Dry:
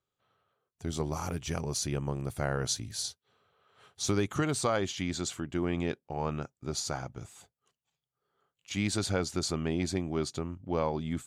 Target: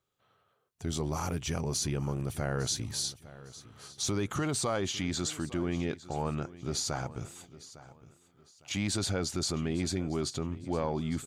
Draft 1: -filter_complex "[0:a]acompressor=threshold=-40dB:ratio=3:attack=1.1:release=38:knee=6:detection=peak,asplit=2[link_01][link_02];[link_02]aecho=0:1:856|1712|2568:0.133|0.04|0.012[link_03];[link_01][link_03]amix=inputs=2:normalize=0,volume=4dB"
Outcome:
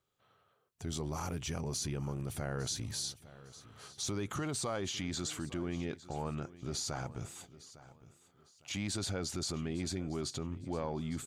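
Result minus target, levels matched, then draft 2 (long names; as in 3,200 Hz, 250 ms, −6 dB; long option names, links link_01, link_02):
downward compressor: peak gain reduction +5.5 dB
-filter_complex "[0:a]acompressor=threshold=-31.5dB:ratio=3:attack=1.1:release=38:knee=6:detection=peak,asplit=2[link_01][link_02];[link_02]aecho=0:1:856|1712|2568:0.133|0.04|0.012[link_03];[link_01][link_03]amix=inputs=2:normalize=0,volume=4dB"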